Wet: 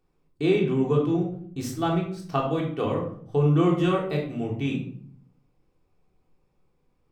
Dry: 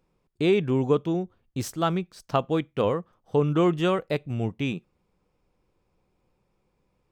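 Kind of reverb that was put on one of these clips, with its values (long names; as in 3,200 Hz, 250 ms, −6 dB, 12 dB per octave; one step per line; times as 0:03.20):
rectangular room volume 810 cubic metres, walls furnished, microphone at 3.5 metres
level −5.5 dB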